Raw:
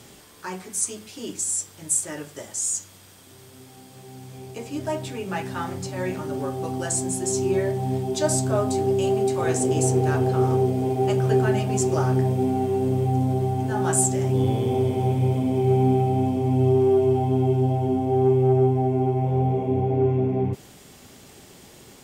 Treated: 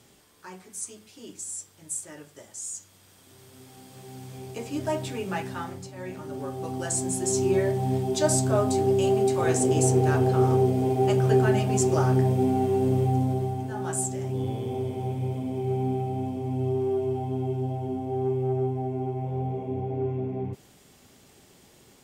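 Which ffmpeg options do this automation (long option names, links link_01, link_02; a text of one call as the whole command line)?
ffmpeg -i in.wav -af "volume=10dB,afade=type=in:start_time=2.76:duration=1.39:silence=0.334965,afade=type=out:start_time=5.21:duration=0.72:silence=0.298538,afade=type=in:start_time=5.93:duration=1.46:silence=0.298538,afade=type=out:start_time=12.99:duration=0.72:silence=0.421697" out.wav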